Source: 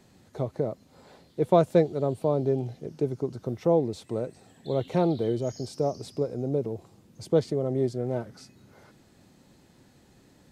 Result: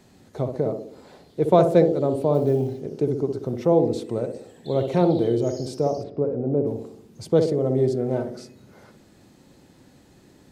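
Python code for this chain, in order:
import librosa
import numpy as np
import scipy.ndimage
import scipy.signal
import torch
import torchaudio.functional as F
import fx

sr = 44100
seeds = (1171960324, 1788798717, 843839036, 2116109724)

y = fx.echo_banded(x, sr, ms=62, feedback_pct=60, hz=340.0, wet_db=-4)
y = fx.quant_companded(y, sr, bits=8, at=(2.34, 2.81))
y = fx.lowpass(y, sr, hz=1500.0, slope=12, at=(6.02, 6.65), fade=0.02)
y = y * 10.0 ** (3.5 / 20.0)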